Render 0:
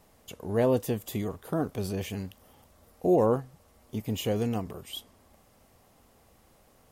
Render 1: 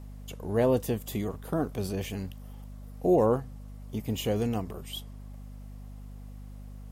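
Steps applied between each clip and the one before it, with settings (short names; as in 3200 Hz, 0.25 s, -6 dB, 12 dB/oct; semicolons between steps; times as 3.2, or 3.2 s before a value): hum 50 Hz, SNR 12 dB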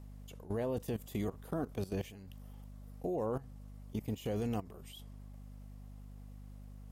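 level quantiser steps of 16 dB; gain -2.5 dB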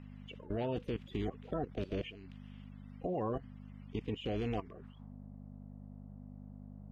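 bin magnitudes rounded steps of 30 dB; low-pass sweep 2800 Hz -> 650 Hz, 4.6–5.15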